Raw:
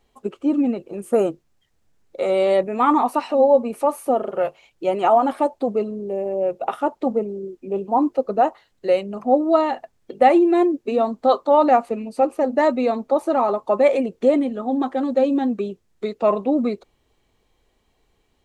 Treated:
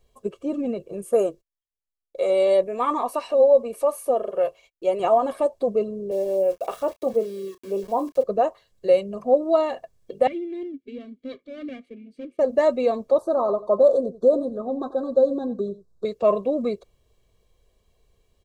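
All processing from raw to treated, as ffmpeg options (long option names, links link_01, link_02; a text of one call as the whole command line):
ffmpeg -i in.wav -filter_complex "[0:a]asettb=1/sr,asplit=3[link_01][link_02][link_03];[link_01]atrim=end=1.044[link_04];[link_02]atrim=start=1.04:end=5,asetpts=PTS-STARTPTS,afade=type=in:duration=0.004:curve=qsin,afade=type=out:start_time=3.956:duration=0.004:curve=qsin,agate=range=-31dB:threshold=-55dB:ratio=16:release=100:detection=peak,equalizer=frequency=130:width=0.96:gain=-11.5[link_05];[link_03]atrim=start=4.996[link_06];[link_04][link_05]acrossfade=duration=0.004:curve1=hsin:curve2=qsin[link_07];[link_07][link_06]acrossfade=duration=0.004:curve1=qsin:curve2=hsin,asettb=1/sr,asplit=3[link_08][link_09][link_10];[link_08]atrim=end=6.114[link_11];[link_09]atrim=start=6.11:end=8.24,asetpts=PTS-STARTPTS,afade=type=in:duration=0.004:curve=qsin,afade=type=out:start_time=2.126:duration=0.004:curve=qsin,highpass=240,aeval=exprs='val(0)*gte(abs(val(0)),0.0106)':channel_layout=same,asplit=2[link_12][link_13];[link_13]adelay=31,volume=-11.5dB[link_14];[link_12][link_14]amix=inputs=2:normalize=0,atrim=end_sample=93933[link_15];[link_10]atrim=start=8.236[link_16];[link_11][link_15]acrossfade=duration=0.004:curve1=hsin:curve2=qsin[link_17];[link_17][link_16]acrossfade=duration=0.004:curve1=qsin:curve2=hsin,asettb=1/sr,asplit=3[link_18][link_19][link_20];[link_18]atrim=end=10.274[link_21];[link_19]atrim=start=10.27:end=12.39,asetpts=PTS-STARTPTS,afade=type=in:duration=0.004:curve=qsin,afade=type=out:start_time=2.116:duration=0.004:curve=qsin,aeval=exprs='if(lt(val(0),0),0.447*val(0),val(0))':channel_layout=same,asplit=3[link_22][link_23][link_24];[link_22]bandpass=frequency=270:width_type=q:width=8,volume=0dB[link_25];[link_23]bandpass=frequency=2290:width_type=q:width=8,volume=-6dB[link_26];[link_24]bandpass=frequency=3010:width_type=q:width=8,volume=-9dB[link_27];[link_25][link_26][link_27]amix=inputs=3:normalize=0,acontrast=27[link_28];[link_20]atrim=start=12.386[link_29];[link_21][link_28]acrossfade=duration=0.004:curve1=hsin:curve2=qsin[link_30];[link_30][link_29]acrossfade=duration=0.004:curve1=qsin:curve2=hsin,asettb=1/sr,asplit=3[link_31][link_32][link_33];[link_31]atrim=end=13.184[link_34];[link_32]atrim=start=13.18:end=16.05,asetpts=PTS-STARTPTS,afade=type=in:duration=0.004:curve=qsin,afade=type=out:start_time=2.866:duration=0.004:curve=qsin,asuperstop=centerf=2400:order=20:qfactor=1.2,highshelf=frequency=4500:gain=-11,aecho=1:1:89:0.15,atrim=end_sample=126567[link_35];[link_33]atrim=start=16.046[link_36];[link_34][link_35]acrossfade=duration=0.004:curve1=hsin:curve2=qsin[link_37];[link_37][link_36]acrossfade=duration=0.004:curve1=qsin:curve2=hsin,equalizer=frequency=1600:width_type=o:width=2.5:gain=-8,aecho=1:1:1.8:0.6,alimiter=level_in=7dB:limit=-1dB:release=50:level=0:latency=1,volume=-7dB" out.wav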